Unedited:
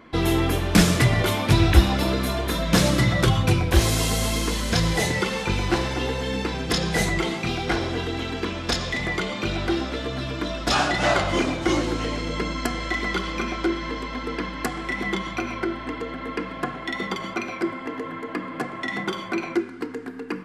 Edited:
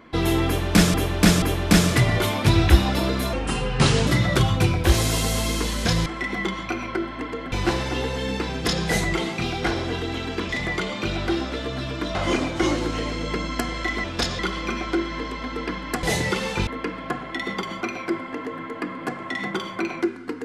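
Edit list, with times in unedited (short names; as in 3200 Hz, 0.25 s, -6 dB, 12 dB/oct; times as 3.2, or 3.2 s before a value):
0.46–0.94 loop, 3 plays
2.37–2.94 speed 77%
4.93–5.57 swap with 14.74–16.2
8.54–8.89 move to 13.1
10.55–11.21 cut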